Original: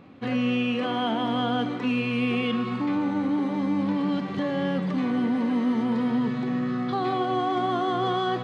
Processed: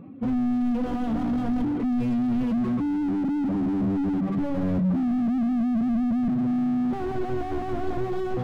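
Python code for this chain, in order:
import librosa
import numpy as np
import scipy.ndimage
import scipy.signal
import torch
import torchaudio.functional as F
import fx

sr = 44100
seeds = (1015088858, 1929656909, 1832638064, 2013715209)

y = fx.spec_expand(x, sr, power=1.8)
y = fx.slew_limit(y, sr, full_power_hz=8.7)
y = F.gain(torch.from_numpy(y), 6.5).numpy()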